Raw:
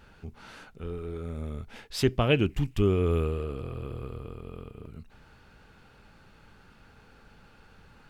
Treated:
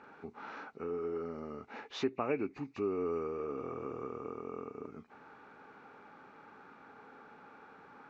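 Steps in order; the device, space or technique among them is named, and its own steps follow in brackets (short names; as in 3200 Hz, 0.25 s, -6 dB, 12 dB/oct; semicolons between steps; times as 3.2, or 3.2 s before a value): hearing aid with frequency lowering (nonlinear frequency compression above 1900 Hz 1.5:1; compressor 3:1, threshold -35 dBFS, peak gain reduction 13 dB; speaker cabinet 260–5800 Hz, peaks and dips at 270 Hz +7 dB, 420 Hz +5 dB, 830 Hz +7 dB, 1200 Hz +7 dB, 3200 Hz -10 dB, 5000 Hz -5 dB)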